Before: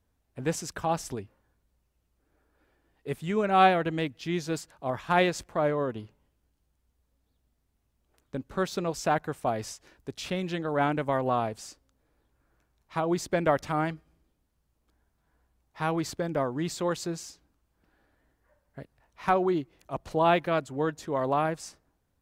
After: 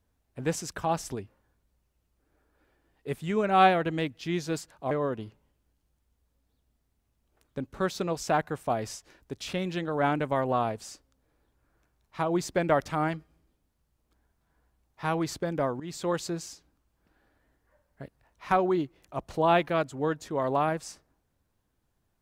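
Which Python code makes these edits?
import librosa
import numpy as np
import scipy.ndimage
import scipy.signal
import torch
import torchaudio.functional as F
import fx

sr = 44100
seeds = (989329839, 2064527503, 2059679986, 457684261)

y = fx.edit(x, sr, fx.cut(start_s=4.91, length_s=0.77),
    fx.fade_in_from(start_s=16.57, length_s=0.27, floor_db=-14.5), tone=tone)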